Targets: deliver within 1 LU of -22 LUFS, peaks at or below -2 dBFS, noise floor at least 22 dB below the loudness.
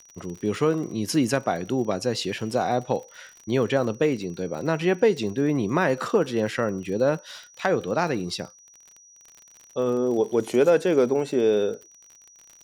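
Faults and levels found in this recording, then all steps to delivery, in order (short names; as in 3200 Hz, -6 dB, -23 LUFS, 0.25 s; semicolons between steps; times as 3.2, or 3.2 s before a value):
ticks 48/s; steady tone 5800 Hz; tone level -50 dBFS; loudness -24.5 LUFS; peak -8.0 dBFS; loudness target -22.0 LUFS
-> de-click; notch 5800 Hz, Q 30; gain +2.5 dB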